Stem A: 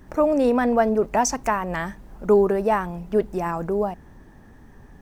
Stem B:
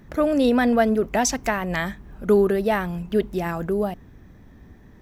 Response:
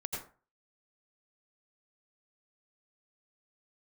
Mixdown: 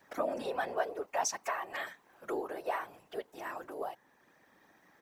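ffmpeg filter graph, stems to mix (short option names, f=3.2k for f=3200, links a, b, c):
-filter_complex "[0:a]volume=-6dB,asplit=2[a][b];[1:a]aecho=1:1:3.7:0.93,adelay=2.4,volume=-1dB[c];[b]apad=whole_len=221635[d];[c][d]sidechaincompress=threshold=-32dB:ratio=8:attack=16:release=1030[e];[a][e]amix=inputs=2:normalize=0,highpass=630,afftfilt=real='hypot(re,im)*cos(2*PI*random(0))':imag='hypot(re,im)*sin(2*PI*random(1))':win_size=512:overlap=0.75"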